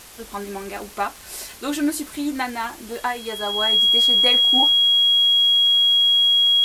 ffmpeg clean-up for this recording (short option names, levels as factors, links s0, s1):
-af "adeclick=t=4,bandreject=f=3300:w=30,afwtdn=0.0079"